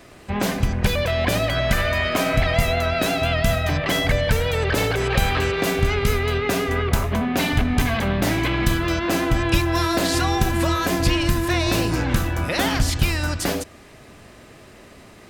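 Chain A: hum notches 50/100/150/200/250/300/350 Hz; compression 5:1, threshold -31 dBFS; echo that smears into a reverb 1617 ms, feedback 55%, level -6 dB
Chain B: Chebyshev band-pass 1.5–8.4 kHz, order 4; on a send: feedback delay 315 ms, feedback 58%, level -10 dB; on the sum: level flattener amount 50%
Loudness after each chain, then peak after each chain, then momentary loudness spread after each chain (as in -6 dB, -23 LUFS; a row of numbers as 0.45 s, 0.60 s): -32.5 LUFS, -24.0 LUFS; -16.0 dBFS, -10.0 dBFS; 4 LU, 5 LU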